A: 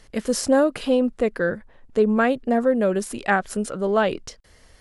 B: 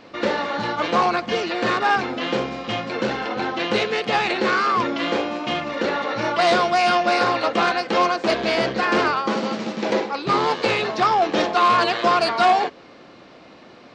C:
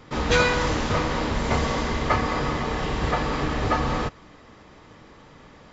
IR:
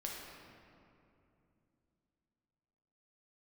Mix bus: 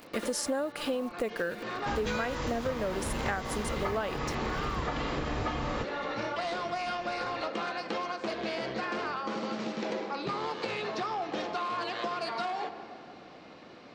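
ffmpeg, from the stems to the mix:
-filter_complex "[0:a]lowshelf=f=310:g=-10,acrusher=bits=7:mix=0:aa=0.000001,volume=1.5dB,asplit=2[a][b];[1:a]acompressor=threshold=-24dB:ratio=6,volume=-8dB,asplit=2[c][d];[d]volume=-5.5dB[e];[2:a]adelay=1750,volume=-2.5dB[f];[b]apad=whole_len=615069[g];[c][g]sidechaincompress=threshold=-27dB:ratio=8:attack=16:release=658[h];[3:a]atrim=start_sample=2205[i];[e][i]afir=irnorm=-1:irlink=0[j];[a][h][f][j]amix=inputs=4:normalize=0,acompressor=threshold=-29dB:ratio=6"

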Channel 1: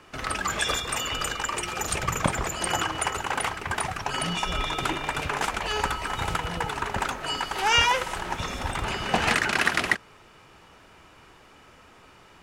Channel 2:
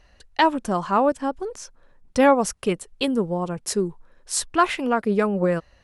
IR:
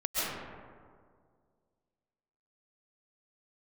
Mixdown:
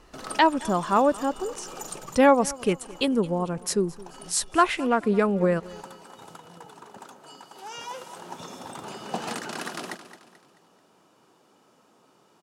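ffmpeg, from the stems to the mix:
-filter_complex "[0:a]highpass=f=160:w=0.5412,highpass=f=160:w=1.3066,equalizer=f=2.1k:w=1.1:g=-13.5,volume=7dB,afade=t=out:st=1.45:d=0.78:silence=0.266073,afade=t=in:st=7.76:d=0.63:silence=0.375837,asplit=2[a][b];[b]volume=-12.5dB[c];[1:a]volume=-1dB,asplit=3[d][e][f];[e]volume=-21dB[g];[f]apad=whole_len=547823[h];[a][h]sidechaincompress=threshold=-45dB:ratio=3:attack=16:release=110[i];[c][g]amix=inputs=2:normalize=0,aecho=0:1:218|436|654|872|1090|1308:1|0.41|0.168|0.0689|0.0283|0.0116[j];[i][d][j]amix=inputs=3:normalize=0"

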